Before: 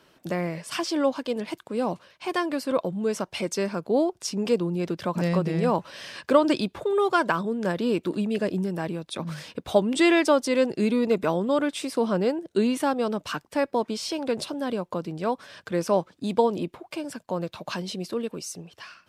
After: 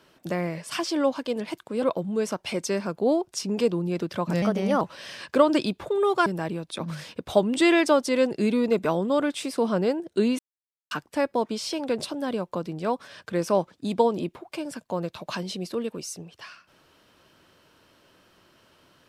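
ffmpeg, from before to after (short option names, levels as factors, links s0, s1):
-filter_complex "[0:a]asplit=7[s0][s1][s2][s3][s4][s5][s6];[s0]atrim=end=1.822[s7];[s1]atrim=start=2.698:end=5.304[s8];[s2]atrim=start=5.3:end=5.76,asetpts=PTS-STARTPTS,asetrate=52038,aresample=44100[s9];[s3]atrim=start=5.756:end=7.212[s10];[s4]atrim=start=8.648:end=12.78,asetpts=PTS-STARTPTS,afade=t=out:st=4.128:d=0.004:c=hsin[s11];[s5]atrim=start=12.78:end=13.3,asetpts=PTS-STARTPTS,volume=0[s12];[s6]atrim=start=13.3,asetpts=PTS-STARTPTS,afade=t=in:d=0.004:c=hsin[s13];[s7][s8]acrossfade=d=0.004:c1=hsin:c2=hsin[s14];[s14][s9]acrossfade=d=0.004:c1=hsin:c2=hsin[s15];[s15][s10]acrossfade=d=0.004:c1=hsin:c2=hsin[s16];[s11][s12][s13]concat=n=3:v=0:a=1[s17];[s16][s17]acrossfade=d=0.004:c1=hsin:c2=hsin"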